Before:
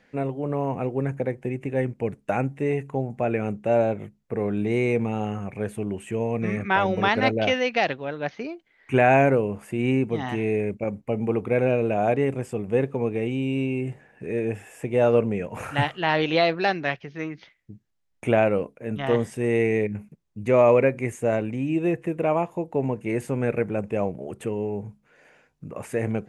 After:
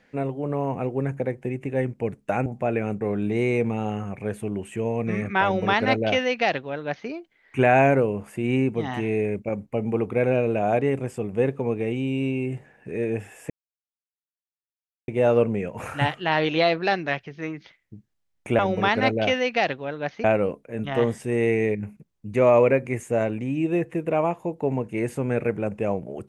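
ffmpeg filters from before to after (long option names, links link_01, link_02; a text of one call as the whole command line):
ffmpeg -i in.wav -filter_complex "[0:a]asplit=6[link_01][link_02][link_03][link_04][link_05][link_06];[link_01]atrim=end=2.462[link_07];[link_02]atrim=start=3.038:end=3.592[link_08];[link_03]atrim=start=4.358:end=14.85,asetpts=PTS-STARTPTS,afade=type=out:start_time=10.488:duration=0.004:curve=hsin,apad=pad_dur=1.58[link_09];[link_04]atrim=start=14.85:end=18.362,asetpts=PTS-STARTPTS,afade=type=in:duration=0.004:curve=hsin[link_10];[link_05]atrim=start=6.788:end=8.442[link_11];[link_06]atrim=start=18.358[link_12];[link_07][link_08]acrossfade=duration=0.004:curve1=hsin:curve2=hsin[link_13];[link_09][link_10]concat=n=2:v=0:a=1[link_14];[link_13][link_14]acrossfade=duration=0.004:curve1=hsin:curve2=hsin[link_15];[link_15][link_11]acrossfade=duration=0.004:curve1=hsin:curve2=hsin[link_16];[link_16][link_12]acrossfade=duration=0.004:curve1=hsin:curve2=hsin" out.wav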